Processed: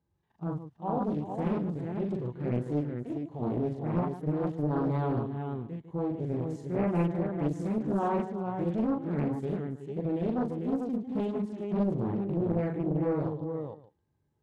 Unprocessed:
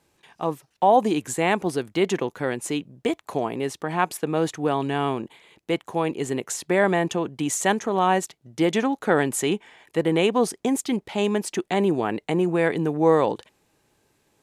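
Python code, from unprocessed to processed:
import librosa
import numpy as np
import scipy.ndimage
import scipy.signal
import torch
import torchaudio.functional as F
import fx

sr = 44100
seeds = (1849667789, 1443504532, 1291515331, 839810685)

y = scipy.signal.sosfilt(scipy.signal.butter(2, 61.0, 'highpass', fs=sr, output='sos'), x)
y = fx.riaa(y, sr, side='playback')
y = fx.rider(y, sr, range_db=10, speed_s=2.0)
y = fx.peak_eq(y, sr, hz=2500.0, db=-7.0, octaves=0.47)
y = fx.level_steps(y, sr, step_db=24)
y = fx.hpss(y, sr, part='percussive', gain_db=-15)
y = fx.echo_multitap(y, sr, ms=(40, 41, 150, 372, 448, 595), db=(-8.0, -3.0, -10.5, -12.5, -4.5, -20.0))
y = fx.doppler_dist(y, sr, depth_ms=0.83)
y = F.gain(torch.from_numpy(y), -5.5).numpy()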